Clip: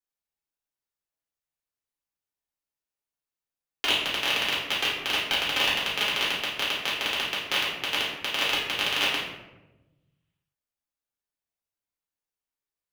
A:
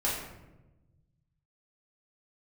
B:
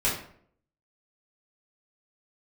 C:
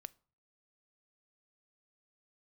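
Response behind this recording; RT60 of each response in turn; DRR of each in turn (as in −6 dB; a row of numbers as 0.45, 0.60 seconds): A; 1.0, 0.60, 0.45 seconds; −7.0, −8.5, 19.0 decibels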